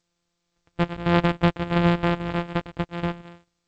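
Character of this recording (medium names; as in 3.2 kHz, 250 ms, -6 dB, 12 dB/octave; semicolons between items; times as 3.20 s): a buzz of ramps at a fixed pitch in blocks of 256 samples; G.722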